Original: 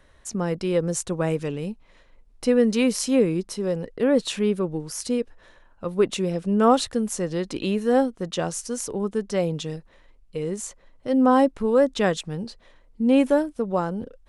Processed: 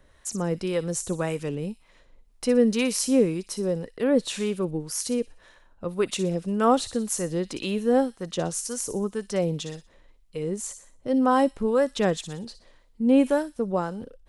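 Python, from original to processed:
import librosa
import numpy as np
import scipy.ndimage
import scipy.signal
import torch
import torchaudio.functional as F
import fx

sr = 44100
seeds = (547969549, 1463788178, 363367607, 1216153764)

y = fx.high_shelf(x, sr, hz=7500.0, db=5.5)
y = fx.echo_wet_highpass(y, sr, ms=60, feedback_pct=41, hz=3800.0, wet_db=-8.5)
y = fx.harmonic_tremolo(y, sr, hz=1.9, depth_pct=50, crossover_hz=700.0)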